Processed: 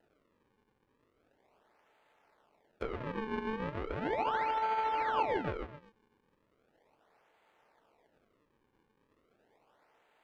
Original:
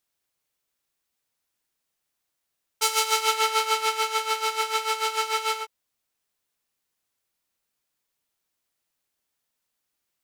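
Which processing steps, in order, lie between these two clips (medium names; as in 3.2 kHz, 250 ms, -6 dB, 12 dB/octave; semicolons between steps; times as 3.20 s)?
spectral levelling over time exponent 0.6; 2.87–5.18 s: compressor with a negative ratio -24 dBFS, ratio -0.5; FFT filter 410 Hz 0 dB, 650 Hz +10 dB, 1.3 kHz -6 dB; thinning echo 124 ms, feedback 24%, high-pass 420 Hz, level -8 dB; decimation with a swept rate 38×, swing 160% 0.37 Hz; low-pass that closes with the level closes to 2.6 kHz, closed at -26 dBFS; tone controls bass -11 dB, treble -13 dB; trim -7 dB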